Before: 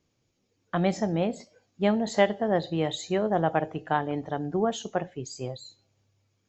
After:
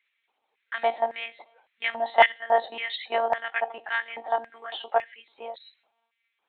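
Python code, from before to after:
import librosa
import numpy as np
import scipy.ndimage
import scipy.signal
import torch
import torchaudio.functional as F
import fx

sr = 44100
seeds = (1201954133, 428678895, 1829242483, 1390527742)

y = fx.lpc_monotone(x, sr, seeds[0], pitch_hz=230.0, order=16)
y = fx.filter_lfo_highpass(y, sr, shape='square', hz=1.8, low_hz=830.0, high_hz=2000.0, q=3.9)
y = F.gain(torch.from_numpy(y), 3.0).numpy()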